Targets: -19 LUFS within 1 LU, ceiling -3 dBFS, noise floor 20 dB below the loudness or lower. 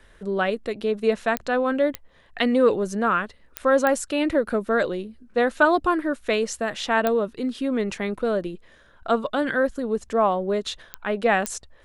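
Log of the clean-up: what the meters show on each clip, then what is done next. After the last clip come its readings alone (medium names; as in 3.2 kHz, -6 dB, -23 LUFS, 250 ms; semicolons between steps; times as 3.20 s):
clicks found 7; loudness -23.5 LUFS; peak level -5.5 dBFS; loudness target -19.0 LUFS
-> de-click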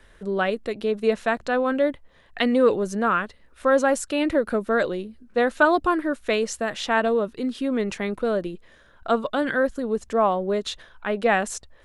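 clicks found 0; loudness -23.5 LUFS; peak level -5.5 dBFS; loudness target -19.0 LUFS
-> trim +4.5 dB; peak limiter -3 dBFS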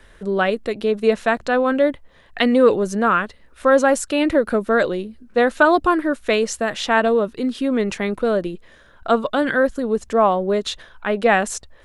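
loudness -19.0 LUFS; peak level -3.0 dBFS; noise floor -50 dBFS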